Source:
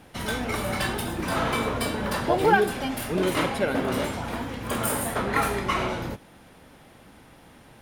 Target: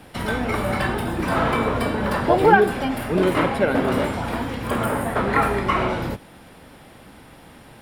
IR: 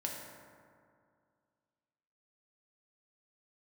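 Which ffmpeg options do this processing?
-filter_complex "[0:a]bandreject=frequency=6300:width=7.5,acrossover=split=110|2400[link_01][link_02][link_03];[link_03]acompressor=threshold=-45dB:ratio=6[link_04];[link_01][link_02][link_04]amix=inputs=3:normalize=0,volume=5.5dB"

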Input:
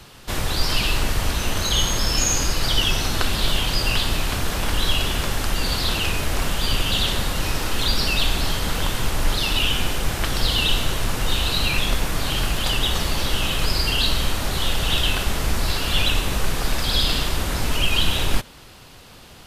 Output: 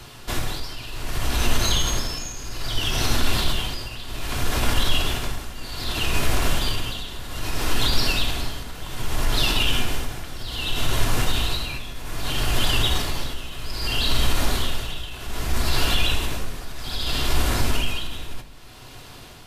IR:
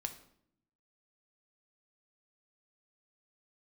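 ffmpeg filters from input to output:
-filter_complex "[0:a]alimiter=limit=-14dB:level=0:latency=1:release=52,tremolo=f=0.63:d=0.81[link_01];[1:a]atrim=start_sample=2205[link_02];[link_01][link_02]afir=irnorm=-1:irlink=0,volume=4dB"

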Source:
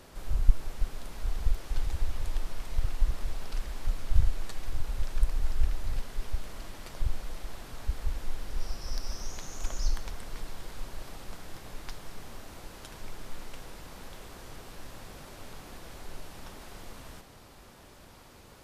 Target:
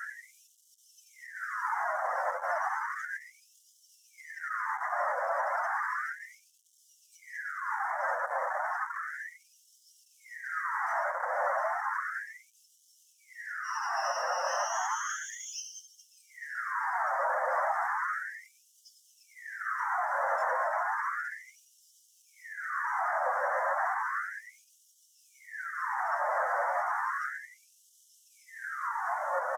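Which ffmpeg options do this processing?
ffmpeg -i in.wav -filter_complex "[0:a]acrossover=split=2400[link_01][link_02];[link_01]dynaudnorm=framelen=220:gausssize=17:maxgain=3.5dB[link_03];[link_03][link_02]amix=inputs=2:normalize=0,atempo=0.63,asplit=2[link_04][link_05];[link_05]adelay=559.8,volume=-11dB,highshelf=frequency=4000:gain=-12.6[link_06];[link_04][link_06]amix=inputs=2:normalize=0,asplit=2[link_07][link_08];[link_08]highpass=frequency=720:poles=1,volume=51dB,asoftclip=type=tanh:threshold=-4dB[link_09];[link_07][link_09]amix=inputs=2:normalize=0,lowpass=frequency=2100:poles=1,volume=-6dB,asoftclip=type=hard:threshold=-9.5dB,afftdn=noise_reduction=19:noise_floor=-20,asuperstop=centerf=3300:order=12:qfactor=0.9,asplit=2[link_10][link_11];[link_11]asetrate=22050,aresample=44100,atempo=2,volume=-13dB[link_12];[link_10][link_12]amix=inputs=2:normalize=0,flanger=delay=5.5:depth=3.5:regen=63:speed=1.6:shape=sinusoidal,alimiter=limit=-17dB:level=0:latency=1:release=235,afftfilt=real='re*gte(b*sr/1024,480*pow(2900/480,0.5+0.5*sin(2*PI*0.33*pts/sr)))':imag='im*gte(b*sr/1024,480*pow(2900/480,0.5+0.5*sin(2*PI*0.33*pts/sr)))':win_size=1024:overlap=0.75,volume=-3.5dB" out.wav

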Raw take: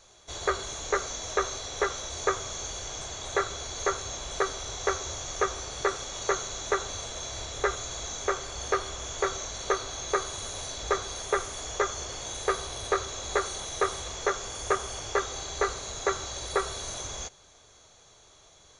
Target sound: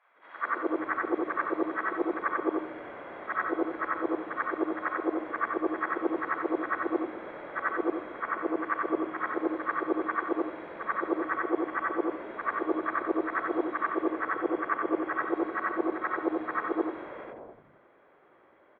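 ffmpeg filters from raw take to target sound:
ffmpeg -i in.wav -filter_complex "[0:a]afftfilt=real='re':imag='-im':win_size=8192:overlap=0.75,acrossover=split=240|940[link_01][link_02][link_03];[link_02]adelay=210[link_04];[link_01]adelay=430[link_05];[link_05][link_04][link_03]amix=inputs=3:normalize=0,highpass=frequency=230:width_type=q:width=0.5412,highpass=frequency=230:width_type=q:width=1.307,lowpass=frequency=2100:width_type=q:width=0.5176,lowpass=frequency=2100:width_type=q:width=0.7071,lowpass=frequency=2100:width_type=q:width=1.932,afreqshift=-70,volume=7.5dB" out.wav

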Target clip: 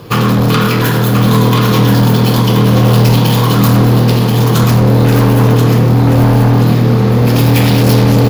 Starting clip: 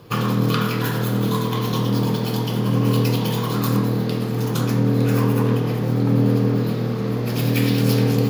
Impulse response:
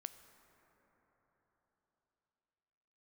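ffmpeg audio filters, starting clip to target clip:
-filter_complex "[0:a]asplit=2[link_01][link_02];[link_02]aeval=exprs='0.473*sin(PI/2*3.55*val(0)/0.473)':channel_layout=same,volume=-10dB[link_03];[link_01][link_03]amix=inputs=2:normalize=0,aecho=1:1:1032|2064|3096|4128:0.531|0.191|0.0688|0.0248,volume=4dB"

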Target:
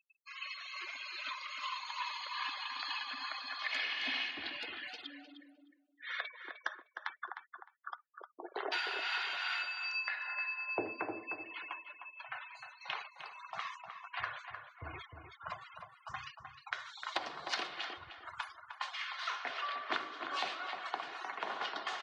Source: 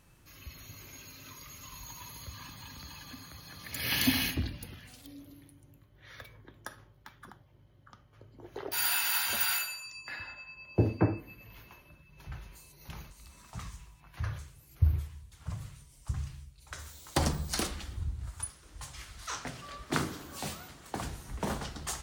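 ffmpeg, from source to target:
ffmpeg -i in.wav -filter_complex "[0:a]highpass=740,afftfilt=real='re*gte(hypot(re,im),0.00224)':imag='im*gte(hypot(re,im),0.00224)':win_size=1024:overlap=0.75,lowpass=frequency=3800:width=0.5412,lowpass=frequency=3800:width=1.3066,aecho=1:1:2.8:0.33,acompressor=threshold=-47dB:ratio=12,tremolo=f=2.4:d=0.35,asplit=2[link_01][link_02];[link_02]adelay=306,lowpass=frequency=1800:poles=1,volume=-6dB,asplit=2[link_03][link_04];[link_04]adelay=306,lowpass=frequency=1800:poles=1,volume=0.22,asplit=2[link_05][link_06];[link_06]adelay=306,lowpass=frequency=1800:poles=1,volume=0.22[link_07];[link_03][link_05][link_07]amix=inputs=3:normalize=0[link_08];[link_01][link_08]amix=inputs=2:normalize=0,volume=14dB" out.wav

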